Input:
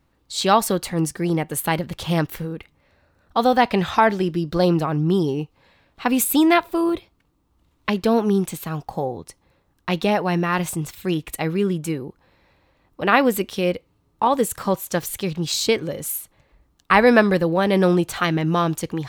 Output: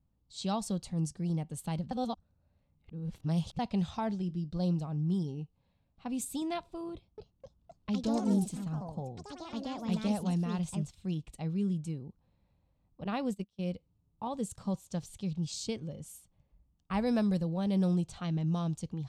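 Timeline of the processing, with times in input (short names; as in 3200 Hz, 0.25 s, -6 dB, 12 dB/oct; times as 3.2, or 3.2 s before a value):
1.91–3.59 reverse
4.15–6.42 resonator 89 Hz, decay 0.2 s, mix 30%
6.92–11.52 echoes that change speed 0.258 s, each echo +4 st, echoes 3
13.04–13.68 gate -24 dBFS, range -25 dB
15.39–17.03 notch 4000 Hz
17.75–18.44 high shelf 7600 Hz -6 dB
whole clip: EQ curve 200 Hz 0 dB, 340 Hz -13 dB, 730 Hz -10 dB, 1800 Hz -21 dB, 3000 Hz -11 dB, 8500 Hz +4 dB, 15000 Hz -4 dB; low-pass opened by the level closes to 2600 Hz, open at -13 dBFS; gain -7.5 dB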